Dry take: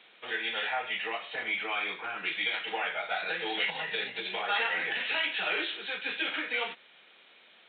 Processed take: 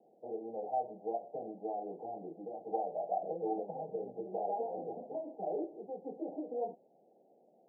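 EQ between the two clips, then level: high-pass 110 Hz; steep low-pass 790 Hz 96 dB/octave; +2.5 dB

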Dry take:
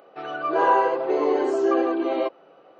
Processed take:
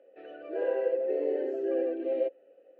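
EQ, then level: vowel filter e; peaking EQ 260 Hz +13.5 dB 1.1 oct; -3.5 dB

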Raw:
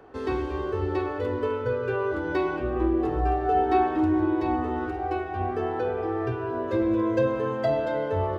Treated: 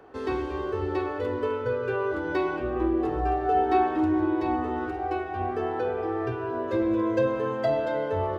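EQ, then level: bass shelf 160 Hz -5 dB; 0.0 dB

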